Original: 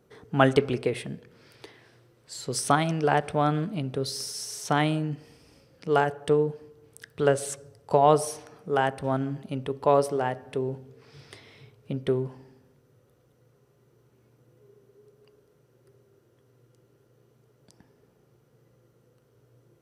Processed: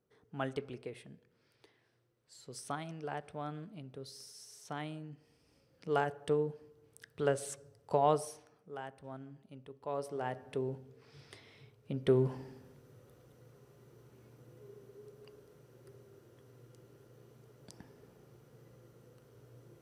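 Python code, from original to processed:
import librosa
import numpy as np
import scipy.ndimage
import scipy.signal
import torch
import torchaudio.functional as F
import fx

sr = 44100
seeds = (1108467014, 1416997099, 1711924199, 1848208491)

y = fx.gain(x, sr, db=fx.line((5.12, -17.5), (5.88, -9.0), (8.07, -9.0), (8.75, -20.0), (9.82, -20.0), (10.38, -7.0), (11.92, -7.0), (12.32, 3.0)))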